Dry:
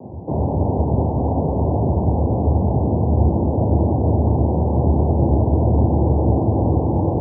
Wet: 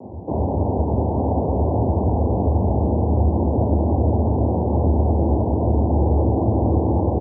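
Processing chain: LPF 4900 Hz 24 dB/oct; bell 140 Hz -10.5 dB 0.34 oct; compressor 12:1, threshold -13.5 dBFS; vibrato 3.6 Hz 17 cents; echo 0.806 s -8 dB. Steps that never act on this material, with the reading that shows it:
LPF 4900 Hz: input band ends at 910 Hz

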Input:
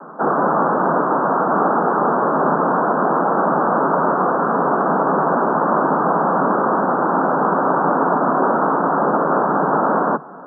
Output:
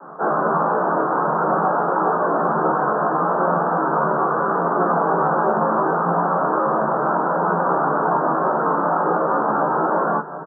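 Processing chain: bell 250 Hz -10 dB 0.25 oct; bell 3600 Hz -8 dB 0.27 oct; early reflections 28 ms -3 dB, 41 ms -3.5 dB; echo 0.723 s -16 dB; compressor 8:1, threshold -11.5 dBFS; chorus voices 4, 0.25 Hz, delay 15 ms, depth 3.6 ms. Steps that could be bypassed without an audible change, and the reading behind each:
bell 3600 Hz: input band ends at 1800 Hz

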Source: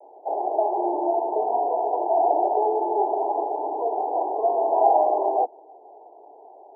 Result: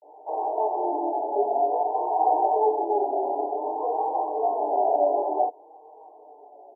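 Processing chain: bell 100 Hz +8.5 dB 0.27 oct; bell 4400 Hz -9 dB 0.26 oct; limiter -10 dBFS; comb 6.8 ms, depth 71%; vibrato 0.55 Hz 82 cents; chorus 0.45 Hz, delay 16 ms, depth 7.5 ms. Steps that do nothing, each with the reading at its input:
bell 100 Hz: input band starts at 270 Hz; bell 4400 Hz: input band ends at 1100 Hz

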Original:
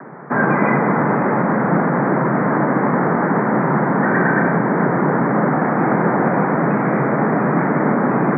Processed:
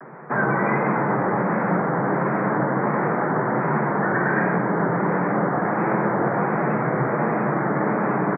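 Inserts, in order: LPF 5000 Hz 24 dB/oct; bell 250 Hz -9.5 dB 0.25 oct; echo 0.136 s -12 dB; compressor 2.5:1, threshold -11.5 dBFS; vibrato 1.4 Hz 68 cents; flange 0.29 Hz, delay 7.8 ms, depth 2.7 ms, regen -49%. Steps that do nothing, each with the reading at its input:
LPF 5000 Hz: input band ends at 2200 Hz

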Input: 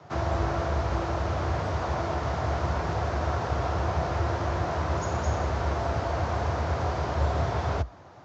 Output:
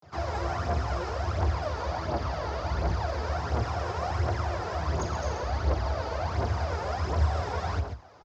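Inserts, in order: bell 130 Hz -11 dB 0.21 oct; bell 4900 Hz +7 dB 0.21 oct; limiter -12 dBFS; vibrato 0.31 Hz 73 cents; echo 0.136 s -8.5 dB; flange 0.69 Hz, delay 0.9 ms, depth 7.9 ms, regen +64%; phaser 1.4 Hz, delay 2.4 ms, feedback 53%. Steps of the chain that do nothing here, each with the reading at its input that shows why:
limiter -12 dBFS: input peak -14.0 dBFS

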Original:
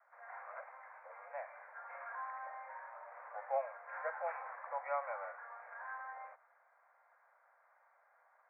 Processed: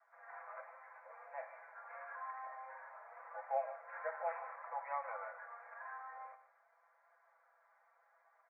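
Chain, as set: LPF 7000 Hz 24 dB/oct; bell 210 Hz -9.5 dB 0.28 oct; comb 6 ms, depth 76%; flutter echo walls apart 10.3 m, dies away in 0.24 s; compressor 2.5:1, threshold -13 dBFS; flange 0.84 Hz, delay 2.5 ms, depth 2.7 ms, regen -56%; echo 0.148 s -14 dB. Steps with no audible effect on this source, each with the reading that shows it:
LPF 7000 Hz: input band ends at 2400 Hz; bell 210 Hz: input band starts at 450 Hz; compressor, threshold -13 dBFS: input peak -22.5 dBFS

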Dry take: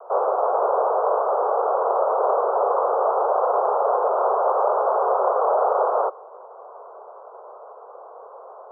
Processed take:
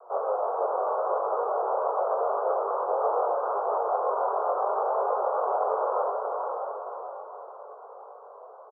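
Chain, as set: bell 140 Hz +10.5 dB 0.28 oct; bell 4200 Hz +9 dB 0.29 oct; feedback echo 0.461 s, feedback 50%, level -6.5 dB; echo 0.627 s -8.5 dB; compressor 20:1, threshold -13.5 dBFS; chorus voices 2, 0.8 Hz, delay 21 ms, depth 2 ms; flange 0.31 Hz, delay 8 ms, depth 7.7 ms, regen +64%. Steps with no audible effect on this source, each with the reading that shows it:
bell 140 Hz: input band starts at 340 Hz; bell 4200 Hz: input band ends at 1500 Hz

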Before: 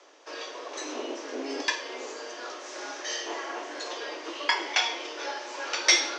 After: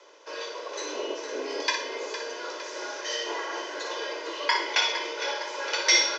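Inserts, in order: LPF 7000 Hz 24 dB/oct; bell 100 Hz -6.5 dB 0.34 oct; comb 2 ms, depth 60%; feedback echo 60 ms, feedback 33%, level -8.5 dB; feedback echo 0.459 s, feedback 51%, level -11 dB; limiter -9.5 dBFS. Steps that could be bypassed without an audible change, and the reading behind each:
bell 100 Hz: input band starts at 230 Hz

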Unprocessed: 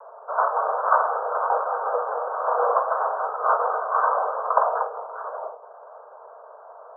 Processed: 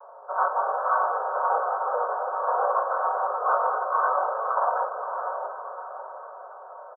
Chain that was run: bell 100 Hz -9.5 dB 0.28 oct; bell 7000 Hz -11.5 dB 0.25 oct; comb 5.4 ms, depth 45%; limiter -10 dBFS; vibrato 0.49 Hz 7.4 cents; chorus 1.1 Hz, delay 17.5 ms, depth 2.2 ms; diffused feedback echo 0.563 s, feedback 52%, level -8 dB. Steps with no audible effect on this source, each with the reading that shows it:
bell 100 Hz: input band starts at 360 Hz; bell 7000 Hz: input band ends at 1700 Hz

